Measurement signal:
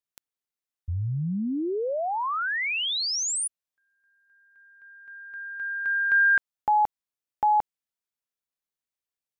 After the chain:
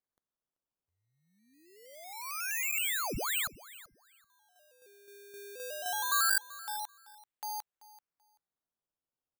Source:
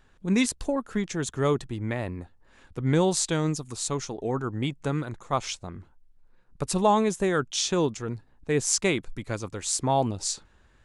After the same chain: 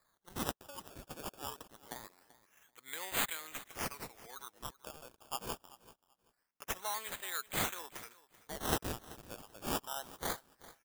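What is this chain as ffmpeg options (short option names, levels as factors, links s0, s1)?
-filter_complex "[0:a]highpass=1500,acrusher=samples=15:mix=1:aa=0.000001:lfo=1:lforange=15:lforate=0.24,crystalizer=i=1.5:c=0,asplit=2[s0][s1];[s1]aecho=0:1:385|770:0.119|0.0226[s2];[s0][s2]amix=inputs=2:normalize=0,volume=0.376"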